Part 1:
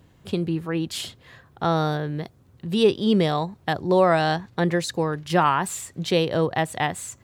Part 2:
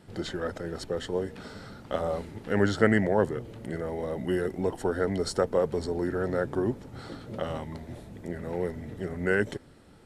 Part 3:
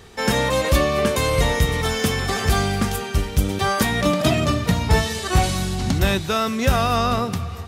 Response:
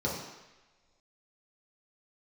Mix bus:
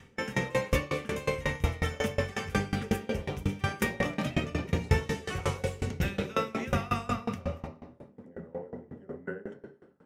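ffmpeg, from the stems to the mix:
-filter_complex "[0:a]volume=-14.5dB[a];[1:a]acrossover=split=180 2300:gain=0.178 1 0.2[b][c][d];[b][c][d]amix=inputs=3:normalize=0,acompressor=threshold=-28dB:ratio=6,volume=-3dB,asplit=2[e][f];[f]volume=-7.5dB[g];[2:a]equalizer=f=2.2k:w=1.9:g=14.5,volume=-10dB,asplit=2[h][i];[i]volume=-9.5dB[j];[3:a]atrim=start_sample=2205[k];[g][j]amix=inputs=2:normalize=0[l];[l][k]afir=irnorm=-1:irlink=0[m];[a][e][h][m]amix=inputs=4:normalize=0,aeval=exprs='val(0)*pow(10,-24*if(lt(mod(5.5*n/s,1),2*abs(5.5)/1000),1-mod(5.5*n/s,1)/(2*abs(5.5)/1000),(mod(5.5*n/s,1)-2*abs(5.5)/1000)/(1-2*abs(5.5)/1000))/20)':c=same"

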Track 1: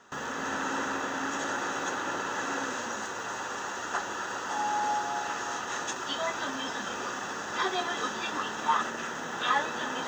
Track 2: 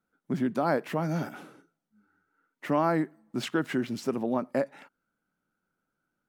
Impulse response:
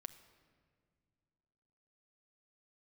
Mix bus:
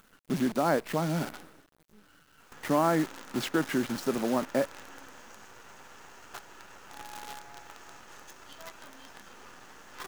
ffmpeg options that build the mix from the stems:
-filter_complex "[0:a]equalizer=f=3.8k:w=4.6:g=-5,adelay=2400,volume=-13.5dB,asplit=2[a][b];[b]volume=-15.5dB[c];[1:a]equalizer=f=91:t=o:w=0.69:g=-6.5,volume=0dB,asplit=2[d][e];[e]volume=-22.5dB[f];[2:a]atrim=start_sample=2205[g];[c][f]amix=inputs=2:normalize=0[h];[h][g]afir=irnorm=-1:irlink=0[i];[a][d][i]amix=inputs=3:normalize=0,acompressor=mode=upward:threshold=-43dB:ratio=2.5,acrusher=bits=7:dc=4:mix=0:aa=0.000001"

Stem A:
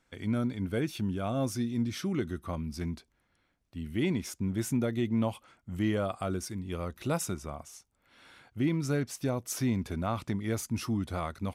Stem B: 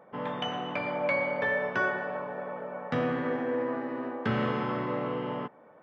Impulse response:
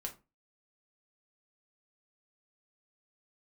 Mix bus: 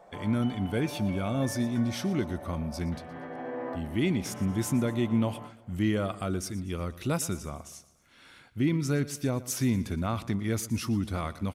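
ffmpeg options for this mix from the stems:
-filter_complex "[0:a]equalizer=f=730:w=1:g=-4.5,volume=3dB,asplit=3[a][b][c];[b]volume=-17.5dB[d];[1:a]equalizer=f=710:t=o:w=0.23:g=13,alimiter=limit=-23dB:level=0:latency=1,volume=-4.5dB,asplit=2[e][f];[f]volume=-7.5dB[g];[c]apad=whole_len=257092[h];[e][h]sidechaincompress=threshold=-44dB:ratio=8:attack=16:release=581[i];[2:a]atrim=start_sample=2205[j];[g][j]afir=irnorm=-1:irlink=0[k];[d]aecho=0:1:118|236|354|472|590|708|826:1|0.48|0.23|0.111|0.0531|0.0255|0.0122[l];[a][i][k][l]amix=inputs=4:normalize=0"

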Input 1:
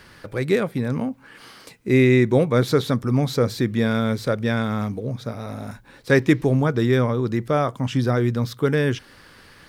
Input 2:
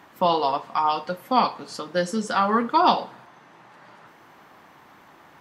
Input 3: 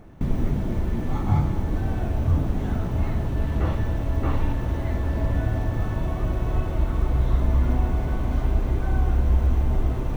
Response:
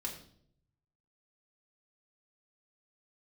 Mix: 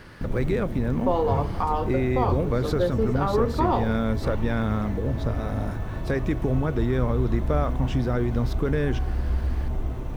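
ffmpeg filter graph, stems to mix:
-filter_complex "[0:a]alimiter=limit=-13.5dB:level=0:latency=1,volume=2.5dB[a];[1:a]lowpass=f=2.4k:p=1,equalizer=f=420:t=o:w=0.79:g=13,adelay=850,volume=1dB[b];[2:a]volume=-5.5dB[c];[a][b]amix=inputs=2:normalize=0,highshelf=f=2.6k:g=-8.5,acompressor=threshold=-26dB:ratio=2,volume=0dB[d];[c][d]amix=inputs=2:normalize=0"

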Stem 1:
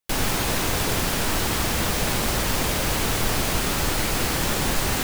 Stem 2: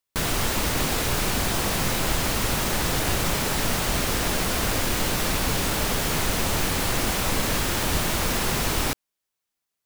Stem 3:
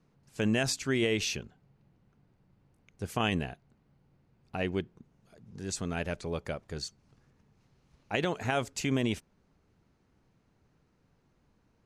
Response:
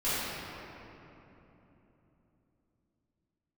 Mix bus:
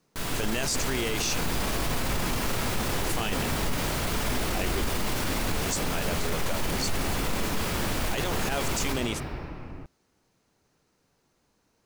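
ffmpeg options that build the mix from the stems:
-filter_complex "[0:a]adelay=750,volume=-13dB[a];[1:a]volume=-12.5dB,asplit=2[b][c];[c]volume=-4dB[d];[2:a]bass=f=250:g=-9,treble=f=4k:g=10,volume=2.5dB[e];[3:a]atrim=start_sample=2205[f];[d][f]afir=irnorm=-1:irlink=0[g];[a][b][e][g]amix=inputs=4:normalize=0,alimiter=limit=-18.5dB:level=0:latency=1:release=10"

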